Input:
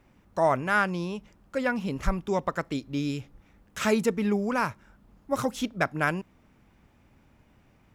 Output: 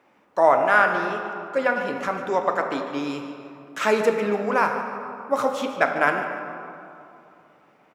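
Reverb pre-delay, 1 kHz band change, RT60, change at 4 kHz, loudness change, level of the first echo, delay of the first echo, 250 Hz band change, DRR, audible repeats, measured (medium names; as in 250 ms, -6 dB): 7 ms, +8.0 dB, 2.7 s, +2.5 dB, +5.5 dB, -13.5 dB, 147 ms, -1.0 dB, 3.5 dB, 1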